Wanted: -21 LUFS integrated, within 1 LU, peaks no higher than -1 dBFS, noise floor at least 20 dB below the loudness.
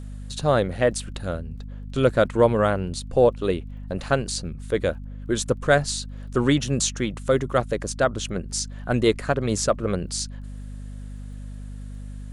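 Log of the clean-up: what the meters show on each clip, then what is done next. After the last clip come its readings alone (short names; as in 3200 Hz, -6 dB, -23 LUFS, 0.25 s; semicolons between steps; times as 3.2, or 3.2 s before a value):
ticks 23/s; hum 50 Hz; harmonics up to 250 Hz; hum level -33 dBFS; loudness -24.0 LUFS; peak -5.0 dBFS; loudness target -21.0 LUFS
-> de-click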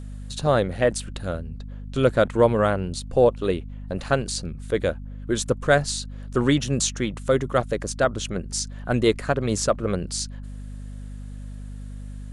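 ticks 0/s; hum 50 Hz; harmonics up to 250 Hz; hum level -33 dBFS
-> notches 50/100/150/200/250 Hz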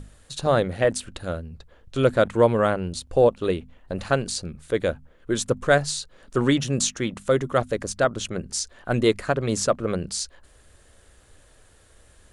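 hum none; loudness -24.0 LUFS; peak -5.5 dBFS; loudness target -21.0 LUFS
-> gain +3 dB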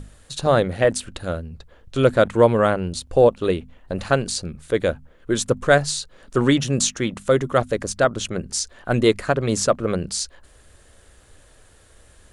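loudness -21.0 LUFS; peak -2.5 dBFS; noise floor -53 dBFS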